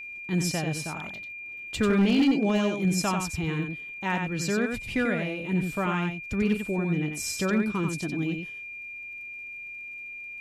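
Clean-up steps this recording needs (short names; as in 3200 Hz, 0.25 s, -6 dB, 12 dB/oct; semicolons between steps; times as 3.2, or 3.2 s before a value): clip repair -16.5 dBFS; de-click; notch 2400 Hz, Q 30; inverse comb 92 ms -5.5 dB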